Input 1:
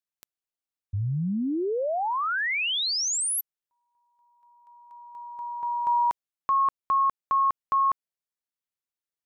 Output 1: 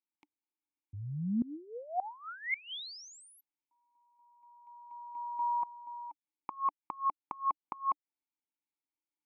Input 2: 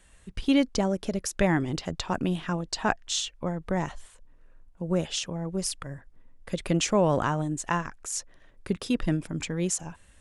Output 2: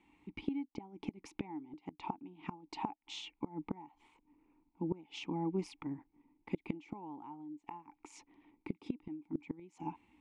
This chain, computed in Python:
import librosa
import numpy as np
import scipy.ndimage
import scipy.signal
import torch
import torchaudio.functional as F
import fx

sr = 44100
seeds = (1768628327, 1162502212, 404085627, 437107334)

y = fx.vowel_filter(x, sr, vowel='u')
y = fx.dynamic_eq(y, sr, hz=820.0, q=3.3, threshold_db=-55.0, ratio=5.0, max_db=7)
y = fx.gate_flip(y, sr, shuts_db=-34.0, range_db=-24)
y = fx.high_shelf(y, sr, hz=5500.0, db=-9.0)
y = y * librosa.db_to_amplitude(10.5)